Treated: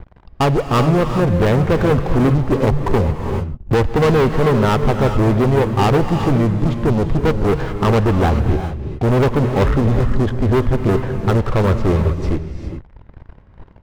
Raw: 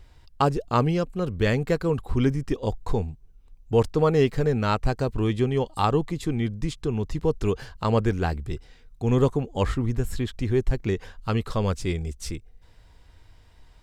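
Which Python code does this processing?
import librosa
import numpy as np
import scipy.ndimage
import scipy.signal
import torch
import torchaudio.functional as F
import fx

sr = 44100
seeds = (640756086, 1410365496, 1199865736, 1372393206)

y = scipy.signal.sosfilt(scipy.signal.butter(2, 1200.0, 'lowpass', fs=sr, output='sos'), x)
y = fx.leveller(y, sr, passes=5)
y = fx.rev_gated(y, sr, seeds[0], gate_ms=440, shape='rising', drr_db=6.5)
y = fx.band_squash(y, sr, depth_pct=40, at=(2.6, 3.97))
y = F.gain(torch.from_numpy(y), -1.5).numpy()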